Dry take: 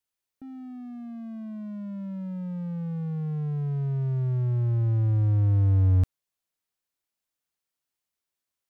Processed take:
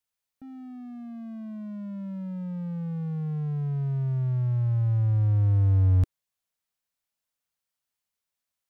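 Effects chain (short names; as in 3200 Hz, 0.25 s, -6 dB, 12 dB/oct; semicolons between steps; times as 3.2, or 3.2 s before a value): bell 350 Hz -13 dB 0.28 oct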